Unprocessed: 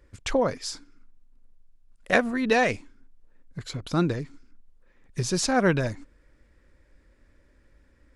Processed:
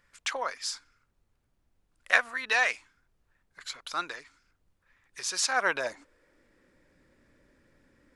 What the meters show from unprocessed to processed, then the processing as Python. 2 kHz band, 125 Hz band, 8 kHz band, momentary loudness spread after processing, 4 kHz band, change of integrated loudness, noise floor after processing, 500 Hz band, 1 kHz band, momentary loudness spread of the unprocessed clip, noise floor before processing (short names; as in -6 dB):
+1.5 dB, under -30 dB, 0.0 dB, 16 LU, +0.5 dB, -3.5 dB, -74 dBFS, -11.5 dB, -3.5 dB, 19 LU, -61 dBFS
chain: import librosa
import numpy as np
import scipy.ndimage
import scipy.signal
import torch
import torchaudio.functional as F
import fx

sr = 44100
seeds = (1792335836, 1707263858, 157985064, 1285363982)

y = fx.filter_sweep_highpass(x, sr, from_hz=1200.0, to_hz=140.0, start_s=5.49, end_s=6.92, q=1.1)
y = fx.dmg_noise_colour(y, sr, seeds[0], colour='brown', level_db=-71.0)